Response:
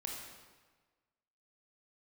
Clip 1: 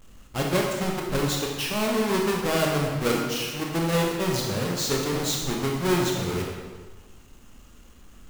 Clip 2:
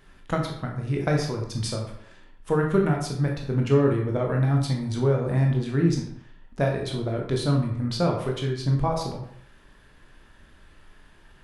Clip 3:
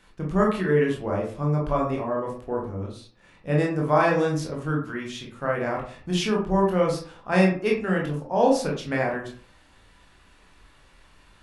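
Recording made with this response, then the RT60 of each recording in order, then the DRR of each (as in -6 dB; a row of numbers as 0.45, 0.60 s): 1; 1.4, 0.65, 0.45 s; -1.0, 0.0, -2.0 dB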